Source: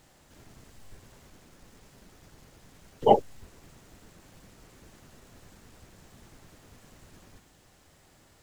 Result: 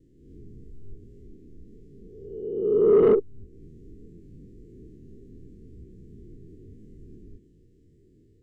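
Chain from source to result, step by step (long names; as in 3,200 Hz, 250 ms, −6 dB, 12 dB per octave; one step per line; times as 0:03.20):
peak hold with a rise ahead of every peak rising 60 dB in 1.46 s
flat-topped bell 850 Hz −12.5 dB
in parallel at +2 dB: downward compressor, threshold −47 dBFS, peak gain reduction 27 dB
on the sum: noise gate with hold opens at −45 dBFS
low shelf with overshoot 610 Hz +10.5 dB, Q 3
soft clipping −11.5 dBFS, distortion −6 dB
every bin expanded away from the loudest bin 1.5 to 1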